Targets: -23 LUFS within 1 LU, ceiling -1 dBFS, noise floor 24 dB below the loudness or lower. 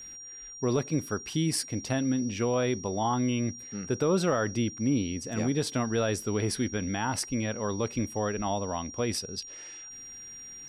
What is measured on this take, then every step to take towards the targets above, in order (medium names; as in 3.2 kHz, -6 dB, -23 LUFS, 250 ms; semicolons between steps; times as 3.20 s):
steady tone 5.7 kHz; tone level -42 dBFS; loudness -29.5 LUFS; peak level -16.5 dBFS; loudness target -23.0 LUFS
-> band-stop 5.7 kHz, Q 30; trim +6.5 dB